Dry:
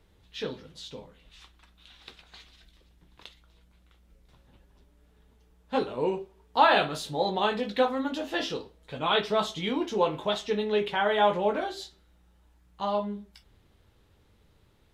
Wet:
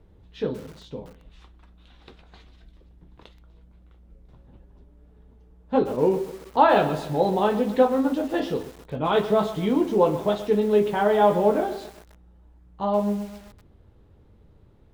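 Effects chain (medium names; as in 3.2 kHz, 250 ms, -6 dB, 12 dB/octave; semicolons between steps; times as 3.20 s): tilt shelf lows +9 dB, about 1.3 kHz; bit-crushed delay 128 ms, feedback 55%, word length 6-bit, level -13 dB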